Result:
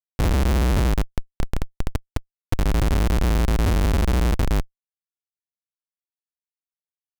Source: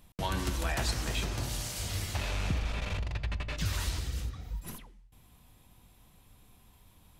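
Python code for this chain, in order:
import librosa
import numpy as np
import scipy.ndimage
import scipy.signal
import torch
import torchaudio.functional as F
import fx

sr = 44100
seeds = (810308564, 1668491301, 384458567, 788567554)

y = fx.low_shelf_res(x, sr, hz=110.0, db=11.5, q=1.5)
y = fx.rider(y, sr, range_db=10, speed_s=0.5)
y = fx.stiff_resonator(y, sr, f0_hz=110.0, decay_s=0.2, stiffness=0.008, at=(1.02, 2.59))
y = fx.schmitt(y, sr, flips_db=-25.0)
y = F.gain(torch.from_numpy(y), 7.0).numpy()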